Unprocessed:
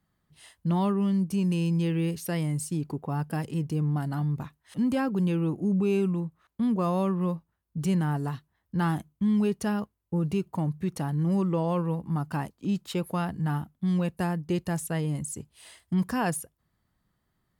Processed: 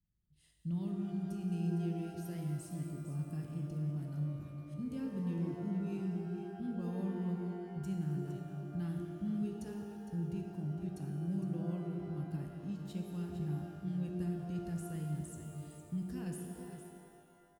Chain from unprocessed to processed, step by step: amplifier tone stack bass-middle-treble 10-0-1; on a send: delay 459 ms -10 dB; on the sum: pitch-shifted reverb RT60 2.1 s, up +12 st, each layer -8 dB, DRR 2.5 dB; trim +2.5 dB

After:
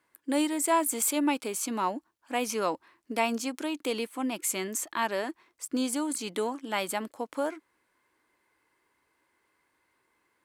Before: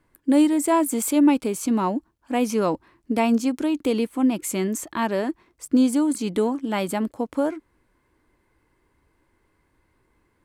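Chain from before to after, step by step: high-pass 1 kHz 6 dB/octave

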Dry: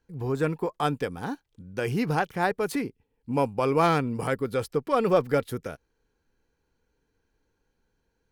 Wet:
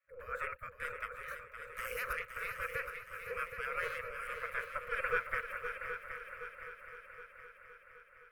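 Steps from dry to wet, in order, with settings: 1.28–2.13 s: tone controls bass 0 dB, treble +13 dB; spectral gate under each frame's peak -25 dB weak; FFT filter 120 Hz 0 dB, 330 Hz -25 dB, 490 Hz +13 dB, 790 Hz -27 dB, 1.3 kHz +6 dB, 2.4 kHz -4 dB, 3.5 kHz -25 dB, 5.1 kHz -28 dB, 8 kHz -22 dB, 14 kHz -15 dB; on a send: multi-head delay 257 ms, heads second and third, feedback 59%, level -9 dB; on the sum: trim +7.5 dB

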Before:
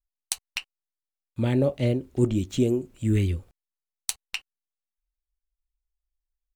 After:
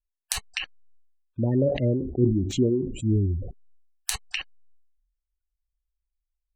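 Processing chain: spectral gate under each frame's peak -20 dB strong; peaking EQ 1.7 kHz +13 dB 0.25 oct; decay stretcher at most 65 dB/s

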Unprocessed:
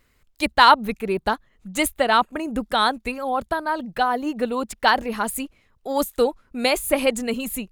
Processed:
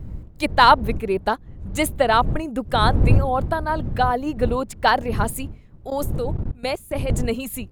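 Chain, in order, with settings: wind noise 97 Hz -22 dBFS; dynamic bell 520 Hz, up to +5 dB, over -28 dBFS, Q 0.76; 5.90–7.10 s: level held to a coarse grid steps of 21 dB; trim -2 dB

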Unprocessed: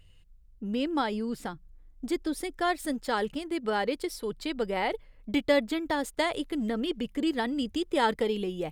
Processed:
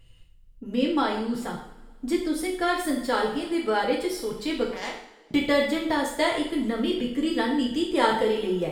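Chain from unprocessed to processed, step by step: 4.65–5.31 s: power-law waveshaper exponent 3; two-slope reverb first 0.58 s, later 2 s, from -19 dB, DRR -2.5 dB

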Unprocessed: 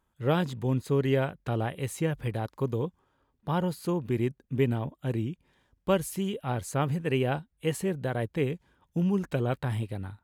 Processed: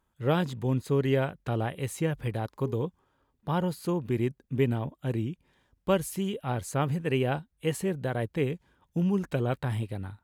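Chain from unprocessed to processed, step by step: 2.47–2.87 s: de-hum 206.2 Hz, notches 5

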